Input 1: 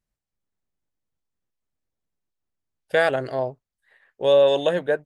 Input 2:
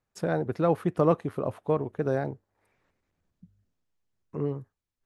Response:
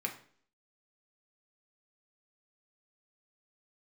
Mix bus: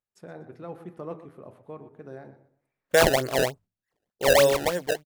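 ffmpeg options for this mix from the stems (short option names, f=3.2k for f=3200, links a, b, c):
-filter_complex "[0:a]acrusher=samples=23:mix=1:aa=0.000001:lfo=1:lforange=36.8:lforate=3.3,dynaudnorm=f=250:g=9:m=13dB,agate=range=-22dB:threshold=-42dB:ratio=16:detection=peak,volume=-6.5dB,asplit=2[a][b];[1:a]bandreject=f=81.61:t=h:w=4,bandreject=f=163.22:t=h:w=4,bandreject=f=244.83:t=h:w=4,bandreject=f=326.44:t=h:w=4,bandreject=f=408.05:t=h:w=4,bandreject=f=489.66:t=h:w=4,bandreject=f=571.27:t=h:w=4,bandreject=f=652.88:t=h:w=4,bandreject=f=734.49:t=h:w=4,bandreject=f=816.1:t=h:w=4,bandreject=f=897.71:t=h:w=4,bandreject=f=979.32:t=h:w=4,bandreject=f=1.06093k:t=h:w=4,bandreject=f=1.14254k:t=h:w=4,bandreject=f=1.22415k:t=h:w=4,bandreject=f=1.30576k:t=h:w=4,bandreject=f=1.38737k:t=h:w=4,bandreject=f=1.46898k:t=h:w=4,bandreject=f=1.55059k:t=h:w=4,bandreject=f=1.6322k:t=h:w=4,bandreject=f=1.71381k:t=h:w=4,bandreject=f=1.79542k:t=h:w=4,bandreject=f=1.87703k:t=h:w=4,bandreject=f=1.95864k:t=h:w=4,bandreject=f=2.04025k:t=h:w=4,bandreject=f=2.12186k:t=h:w=4,bandreject=f=2.20347k:t=h:w=4,bandreject=f=2.28508k:t=h:w=4,bandreject=f=2.36669k:t=h:w=4,bandreject=f=2.4483k:t=h:w=4,volume=-4dB,asplit=3[c][d][e];[d]volume=-20.5dB[f];[e]volume=-23.5dB[g];[b]apad=whole_len=222730[h];[c][h]sidechaingate=range=-12dB:threshold=-46dB:ratio=16:detection=peak[i];[2:a]atrim=start_sample=2205[j];[f][j]afir=irnorm=-1:irlink=0[k];[g]aecho=0:1:121|242|363|484:1|0.26|0.0676|0.0176[l];[a][i][k][l]amix=inputs=4:normalize=0"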